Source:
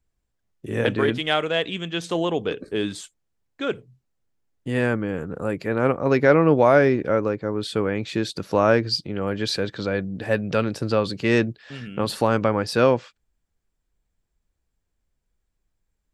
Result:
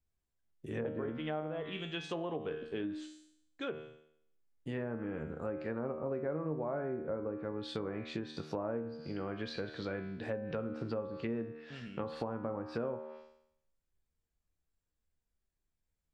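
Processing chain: feedback comb 77 Hz, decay 0.71 s, harmonics all, mix 80%; low-pass that closes with the level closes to 1 kHz, closed at -28 dBFS; compression 5:1, threshold -34 dBFS, peak gain reduction 12.5 dB

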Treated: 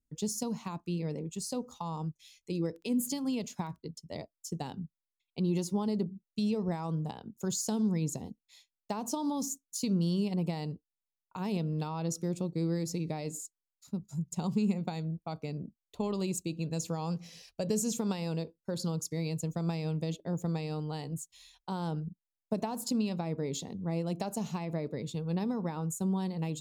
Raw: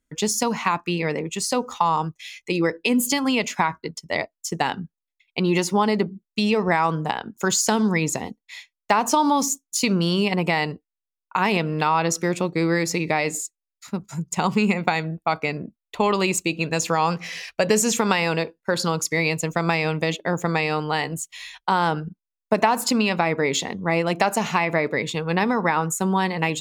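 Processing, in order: FFT filter 150 Hz 0 dB, 350 Hz -7 dB, 550 Hz -9 dB, 2 kHz -24 dB, 3.9 kHz -10 dB, 11 kHz -6 dB; 2.64–3.78 s: crackle 26 per s -40 dBFS; trim -5 dB

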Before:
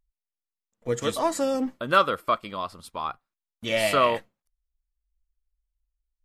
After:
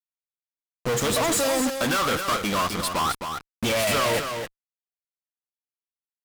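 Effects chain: 1.33–1.99 s: tilt EQ +3 dB/octave; in parallel at -1 dB: compression, threshold -30 dBFS, peak gain reduction 16 dB; on the sum: fuzz box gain 47 dB, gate -42 dBFS; delay 264 ms -7 dB; trim -9 dB

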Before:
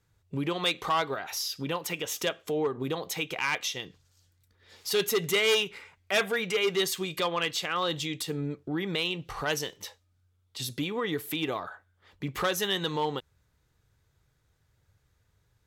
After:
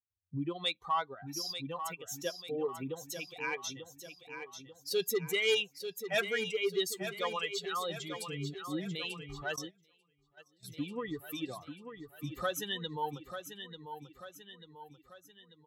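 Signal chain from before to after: expander on every frequency bin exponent 2; on a send: feedback delay 891 ms, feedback 49%, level -9 dB; 9.56–10.68 s: on the sum: gate -39 dBFS, range -23 dB; trim -2 dB

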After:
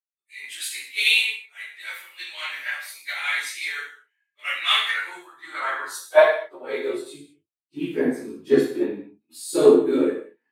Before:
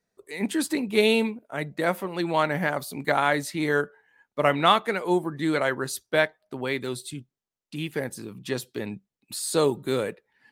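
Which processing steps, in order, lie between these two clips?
phase randomisation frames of 50 ms; dynamic bell 330 Hz, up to +4 dB, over -36 dBFS, Q 1.5; chorus voices 6, 0.54 Hz, delay 13 ms, depth 1.9 ms; hard clipper -10 dBFS, distortion -54 dB; high-pass sweep 2.3 kHz -> 280 Hz, 4.58–7.54 s; gain riding within 4 dB 2 s; gated-style reverb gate 250 ms falling, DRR -2 dB; three bands expanded up and down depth 70%; trim -3.5 dB

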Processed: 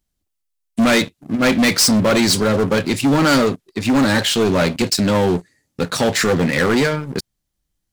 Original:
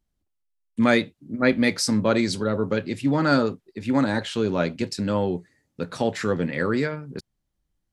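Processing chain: waveshaping leveller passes 2; treble shelf 2.8 kHz +9 dB; saturation -15.5 dBFS, distortion -10 dB; trim +4.5 dB

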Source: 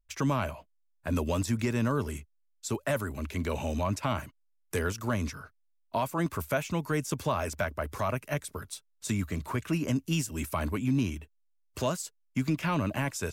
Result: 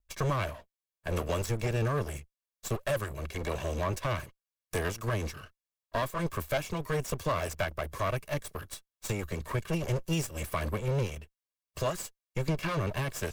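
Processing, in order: comb filter that takes the minimum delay 1.8 ms

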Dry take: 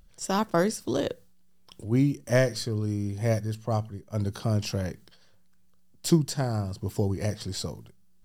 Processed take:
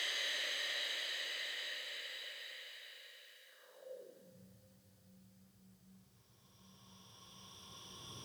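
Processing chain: Doppler pass-by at 2.16 s, 17 m/s, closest 3.8 m; Paulstretch 16×, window 0.50 s, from 1.01 s; high-pass sweep 2.2 kHz -> 96 Hz, 3.44–4.50 s; trim +15.5 dB

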